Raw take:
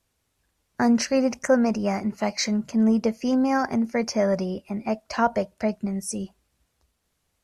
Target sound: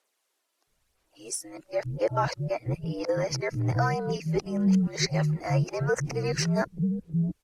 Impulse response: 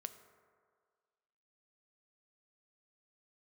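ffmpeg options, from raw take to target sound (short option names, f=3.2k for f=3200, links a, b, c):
-filter_complex "[0:a]areverse,asplit=2[a][b];[b]alimiter=limit=-20dB:level=0:latency=1,volume=-3dB[c];[a][c]amix=inputs=2:normalize=0,aphaser=in_gain=1:out_gain=1:delay=2.9:decay=0.42:speed=0.99:type=sinusoidal,afreqshift=-68,acrossover=split=310[d][e];[d]adelay=670[f];[f][e]amix=inputs=2:normalize=0,volume=-6dB"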